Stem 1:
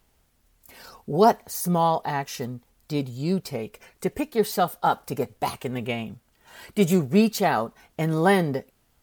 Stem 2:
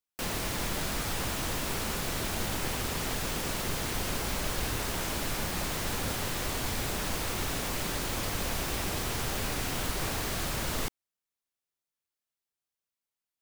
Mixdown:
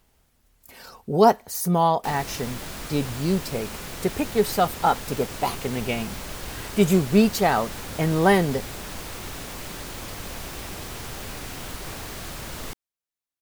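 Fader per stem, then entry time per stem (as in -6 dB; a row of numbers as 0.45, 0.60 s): +1.5, -3.0 dB; 0.00, 1.85 s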